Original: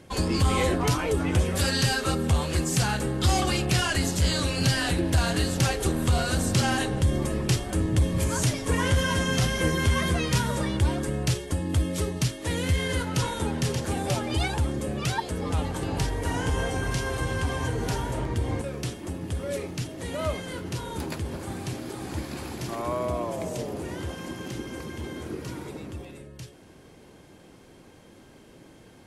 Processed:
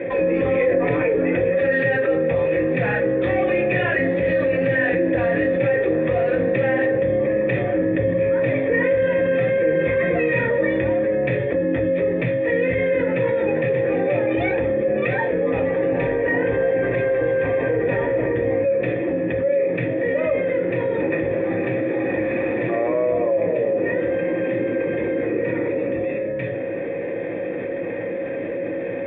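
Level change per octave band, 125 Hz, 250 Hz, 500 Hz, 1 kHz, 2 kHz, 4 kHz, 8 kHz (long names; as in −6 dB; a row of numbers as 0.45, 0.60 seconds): −3.0 dB, +5.5 dB, +14.5 dB, +0.5 dB, +7.5 dB, below −10 dB, below −40 dB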